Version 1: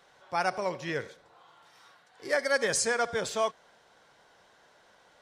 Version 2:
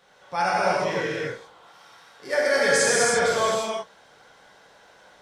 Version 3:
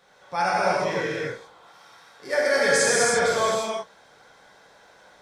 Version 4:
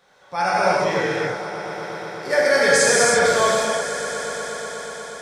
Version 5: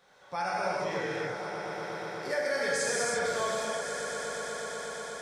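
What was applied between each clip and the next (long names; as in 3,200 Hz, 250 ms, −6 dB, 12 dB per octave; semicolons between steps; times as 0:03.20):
reverb whose tail is shaped and stops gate 370 ms flat, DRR −7 dB
notch filter 2,900 Hz, Q 10
automatic gain control gain up to 5 dB; on a send: echo that builds up and dies away 121 ms, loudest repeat 5, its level −17 dB
downward compressor 2 to 1, threshold −30 dBFS, peak gain reduction 10.5 dB; level −4.5 dB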